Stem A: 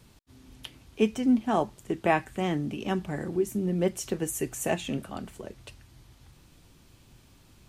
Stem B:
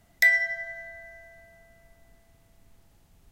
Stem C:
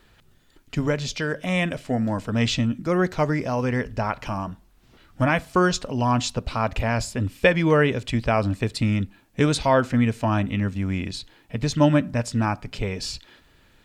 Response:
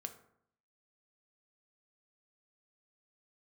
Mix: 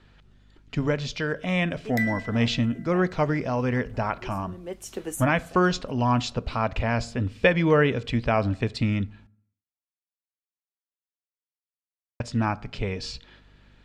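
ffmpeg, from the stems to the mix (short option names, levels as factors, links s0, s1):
-filter_complex "[0:a]highpass=260,adelay=850,volume=0.891[s0];[1:a]adelay=1750,volume=0.335[s1];[2:a]lowpass=5000,aeval=exprs='val(0)+0.002*(sin(2*PI*50*n/s)+sin(2*PI*2*50*n/s)/2+sin(2*PI*3*50*n/s)/3+sin(2*PI*4*50*n/s)/4+sin(2*PI*5*50*n/s)/5)':c=same,volume=0.668,asplit=3[s2][s3][s4];[s2]atrim=end=9.27,asetpts=PTS-STARTPTS,afade=t=out:st=9.266:d=0.004:c=hsin[s5];[s3]atrim=start=9.27:end=12.2,asetpts=PTS-STARTPTS,volume=0[s6];[s4]atrim=start=12.2,asetpts=PTS-STARTPTS,afade=t=in:d=0.004:c=hsin[s7];[s5][s6][s7]concat=n=3:v=0:a=1,asplit=3[s8][s9][s10];[s9]volume=0.398[s11];[s10]apad=whole_len=376404[s12];[s0][s12]sidechaincompress=threshold=0.00891:ratio=8:attack=25:release=614[s13];[3:a]atrim=start_sample=2205[s14];[s11][s14]afir=irnorm=-1:irlink=0[s15];[s13][s1][s8][s15]amix=inputs=4:normalize=0"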